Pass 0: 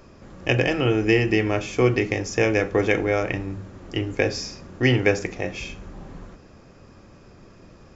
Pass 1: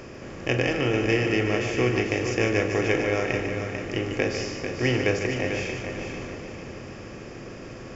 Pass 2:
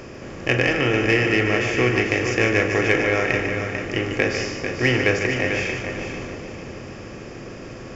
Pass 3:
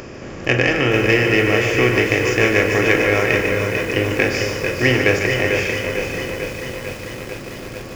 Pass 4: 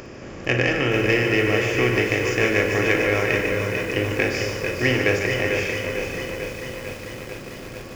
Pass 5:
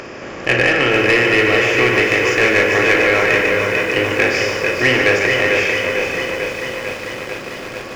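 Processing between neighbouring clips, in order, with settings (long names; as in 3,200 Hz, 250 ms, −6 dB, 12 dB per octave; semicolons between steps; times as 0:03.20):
compressor on every frequency bin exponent 0.6; echo machine with several playback heads 148 ms, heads first and third, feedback 55%, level −8 dB; level −7 dB
dynamic equaliser 1,800 Hz, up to +6 dB, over −40 dBFS, Q 1.1; in parallel at −7 dB: soft clipping −15 dBFS, distortion −15 dB
upward compression, threshold −40 dBFS; feedback echo at a low word length 446 ms, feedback 80%, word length 6 bits, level −9 dB; level +3 dB
flutter between parallel walls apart 9.9 metres, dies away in 0.26 s; level −4.5 dB
mid-hump overdrive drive 15 dB, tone 3,200 Hz, clips at −5 dBFS; level +2.5 dB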